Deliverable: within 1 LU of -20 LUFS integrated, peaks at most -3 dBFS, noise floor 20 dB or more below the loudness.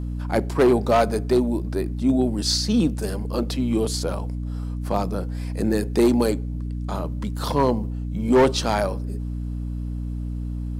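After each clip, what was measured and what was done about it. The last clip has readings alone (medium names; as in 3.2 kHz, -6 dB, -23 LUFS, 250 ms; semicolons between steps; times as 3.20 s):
clipped samples 0.7%; clipping level -11.5 dBFS; hum 60 Hz; highest harmonic 300 Hz; hum level -26 dBFS; loudness -23.5 LUFS; peak level -11.5 dBFS; loudness target -20.0 LUFS
-> clip repair -11.5 dBFS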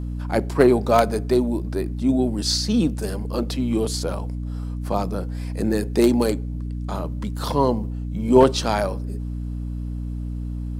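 clipped samples 0.0%; hum 60 Hz; highest harmonic 300 Hz; hum level -26 dBFS
-> de-hum 60 Hz, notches 5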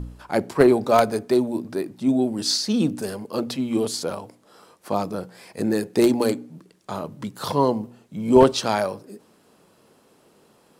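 hum not found; loudness -22.5 LUFS; peak level -2.5 dBFS; loudness target -20.0 LUFS
-> trim +2.5 dB; peak limiter -3 dBFS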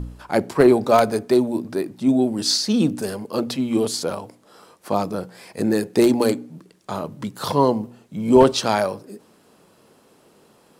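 loudness -20.5 LUFS; peak level -3.0 dBFS; noise floor -56 dBFS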